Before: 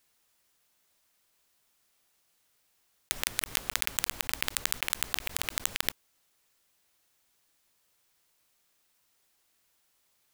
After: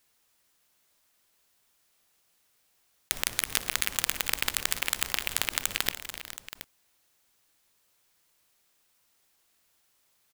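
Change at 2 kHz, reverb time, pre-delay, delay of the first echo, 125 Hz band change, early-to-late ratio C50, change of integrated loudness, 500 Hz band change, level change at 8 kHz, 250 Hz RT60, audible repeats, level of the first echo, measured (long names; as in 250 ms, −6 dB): +2.0 dB, no reverb audible, no reverb audible, 61 ms, +2.0 dB, no reverb audible, +1.5 dB, +2.0 dB, +2.0 dB, no reverb audible, 6, −19.0 dB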